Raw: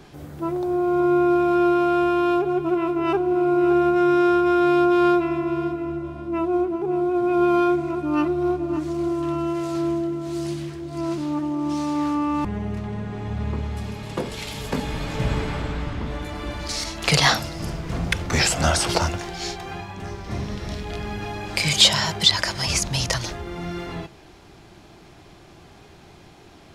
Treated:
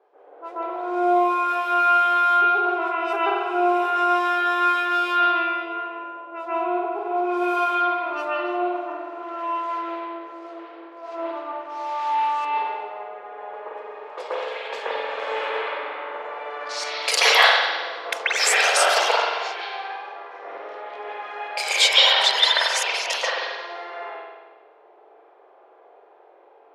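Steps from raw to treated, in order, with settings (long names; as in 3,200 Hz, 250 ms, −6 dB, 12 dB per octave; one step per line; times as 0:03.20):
elliptic high-pass filter 460 Hz, stop band 70 dB
low-pass that shuts in the quiet parts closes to 630 Hz, open at −22.5 dBFS
high-shelf EQ 4,000 Hz +9.5 dB, from 0:21.48 +3 dB, from 0:23.19 +10.5 dB
convolution reverb RT60 1.3 s, pre-delay 130 ms, DRR −9.5 dB
level −5 dB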